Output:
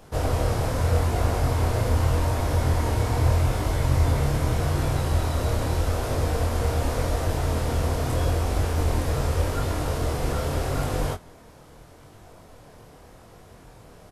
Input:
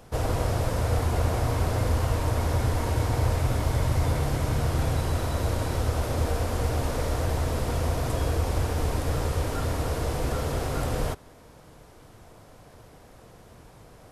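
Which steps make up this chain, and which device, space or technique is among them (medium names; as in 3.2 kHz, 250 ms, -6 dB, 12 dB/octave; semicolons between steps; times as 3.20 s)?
double-tracked vocal (doubling 23 ms -12 dB; chorus 0.82 Hz, delay 20 ms, depth 7.9 ms); trim +4.5 dB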